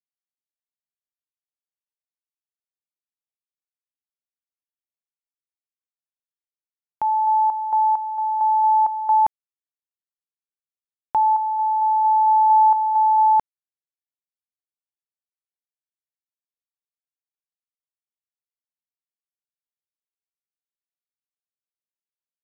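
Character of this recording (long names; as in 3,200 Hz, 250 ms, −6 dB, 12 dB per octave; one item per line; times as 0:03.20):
a quantiser's noise floor 12 bits, dither none
sample-and-hold tremolo 4.4 Hz, depth 75%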